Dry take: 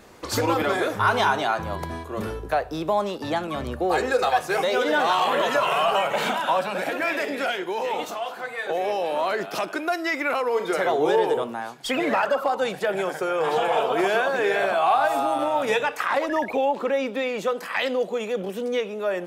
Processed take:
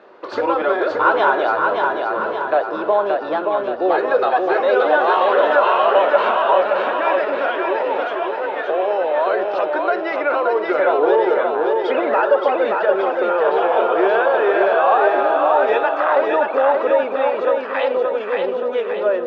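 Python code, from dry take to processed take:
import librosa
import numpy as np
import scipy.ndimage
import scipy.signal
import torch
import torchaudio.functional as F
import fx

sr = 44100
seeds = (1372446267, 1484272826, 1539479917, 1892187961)

p1 = fx.cabinet(x, sr, low_hz=360.0, low_slope=12, high_hz=3400.0, hz=(380.0, 580.0, 980.0, 1400.0, 2200.0, 3200.0), db=(7, 7, 3, 4, -6, -4))
p2 = p1 + fx.echo_feedback(p1, sr, ms=575, feedback_pct=52, wet_db=-3.5, dry=0)
y = p2 * librosa.db_to_amplitude(1.5)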